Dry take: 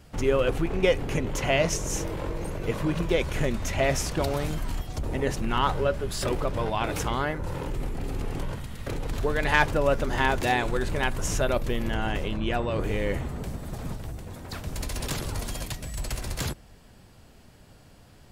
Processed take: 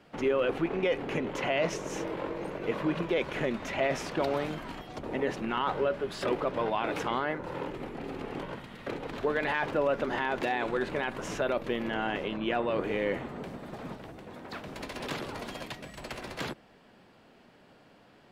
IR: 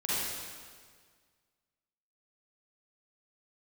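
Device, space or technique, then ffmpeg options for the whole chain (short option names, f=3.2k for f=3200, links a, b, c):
DJ mixer with the lows and highs turned down: -filter_complex "[0:a]acrossover=split=180 3900:gain=0.0794 1 0.141[a][b][c];[a][b][c]amix=inputs=3:normalize=0,alimiter=limit=-18.5dB:level=0:latency=1:release=17"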